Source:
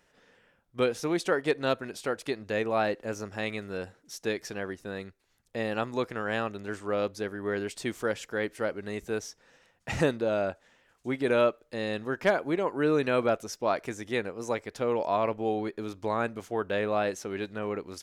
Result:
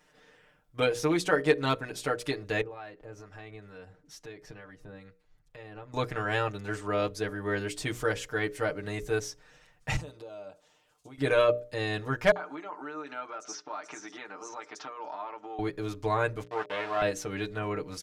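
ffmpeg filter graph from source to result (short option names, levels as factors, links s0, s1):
-filter_complex "[0:a]asettb=1/sr,asplit=3[s0][s1][s2];[s0]atrim=end=2.614[s3];[s1]atrim=start=2.61:end=5.94,asetpts=PTS-STARTPTS,afade=t=in:d=0.004:c=qsin,afade=t=out:st=3.326:d=0.004:c=qsin,highshelf=f=4200:g=-11.5,acompressor=threshold=0.00501:ratio=2.5:attack=3.2:release=140:knee=1:detection=peak,acrossover=split=810[s4][s5];[s4]aeval=exprs='val(0)*(1-0.5/2+0.5/2*cos(2*PI*2.2*n/s))':c=same[s6];[s5]aeval=exprs='val(0)*(1-0.5/2-0.5/2*cos(2*PI*2.2*n/s))':c=same[s7];[s6][s7]amix=inputs=2:normalize=0[s8];[s2]atrim=start=5.936[s9];[s3][s8]acrossfade=d=0.004:c1=hsin:c2=qsin[s10];[s10][s9]acrossfade=d=0.004:c1=qsin:c2=hsin,asettb=1/sr,asplit=3[s11][s12][s13];[s11]atrim=end=9.964[s14];[s12]atrim=start=9.96:end=11.18,asetpts=PTS-STARTPTS,afade=t=in:d=0.004:c=qsin,afade=t=out:st=1.216:d=0.004:c=qsin,acompressor=threshold=0.0112:ratio=8:attack=3.2:release=140:knee=1:detection=peak,highpass=f=390:p=1,equalizer=f=1800:w=1.7:g=-12.5[s15];[s13]atrim=start=11.176[s16];[s14][s15]acrossfade=d=0.004:c1=hsin:c2=qsin[s17];[s17][s16]acrossfade=d=0.004:c1=qsin:c2=hsin,asettb=1/sr,asplit=3[s18][s19][s20];[s18]atrim=end=12.314[s21];[s19]atrim=start=12.31:end=15.59,asetpts=PTS-STARTPTS,afade=t=in:d=0.004:c=qsin,afade=t=out:st=3.276:d=0.004:c=qsin,acompressor=threshold=0.0141:ratio=10:attack=3.2:release=140:knee=1:detection=peak,highpass=f=250:w=0.5412,highpass=f=250:w=1.3066,equalizer=f=490:t=q:w=4:g=-9,equalizer=f=890:t=q:w=4:g=7,equalizer=f=1300:t=q:w=4:g=9,equalizer=f=6000:t=q:w=4:g=6,lowpass=f=7000:w=0.5412,lowpass=f=7000:w=1.3066,acrossover=split=5400[s22][s23];[s22]adelay=50[s24];[s24][s23]amix=inputs=2:normalize=0,atrim=end_sample=144648[s25];[s20]atrim=start=15.586[s26];[s21][s25]acrossfade=d=0.004:c1=hsin:c2=qsin[s27];[s27][s26]acrossfade=d=0.004:c1=qsin:c2=hsin,asettb=1/sr,asplit=3[s28][s29][s30];[s28]atrim=end=16.434[s31];[s29]atrim=start=16.43:end=17.02,asetpts=PTS-STARTPTS,afade=t=in:d=0.004:c=qsin,afade=t=out:st=0.586:d=0.004:c=qsin,acrusher=bits=4:dc=4:mix=0:aa=0.000001,highpass=350,lowpass=3000[s32];[s30]atrim=start=17.016[s33];[s31][s32]acrossfade=d=0.004:c1=hsin:c2=qsin[s34];[s34][s33]acrossfade=d=0.004:c1=qsin:c2=hsin,bandreject=f=60:t=h:w=6,bandreject=f=120:t=h:w=6,bandreject=f=180:t=h:w=6,bandreject=f=240:t=h:w=6,bandreject=f=300:t=h:w=6,bandreject=f=360:t=h:w=6,bandreject=f=420:t=h:w=6,bandreject=f=480:t=h:w=6,bandreject=f=540:t=h:w=6,bandreject=f=600:t=h:w=6,aecho=1:1:6.6:0.93,asubboost=boost=3.5:cutoff=120"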